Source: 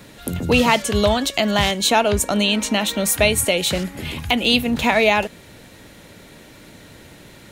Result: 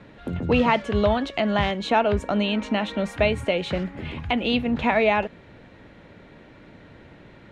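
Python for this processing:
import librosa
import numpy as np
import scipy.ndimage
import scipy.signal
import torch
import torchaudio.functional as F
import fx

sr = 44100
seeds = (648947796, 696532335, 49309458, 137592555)

y = scipy.signal.sosfilt(scipy.signal.butter(2, 2200.0, 'lowpass', fs=sr, output='sos'), x)
y = y * librosa.db_to_amplitude(-3.0)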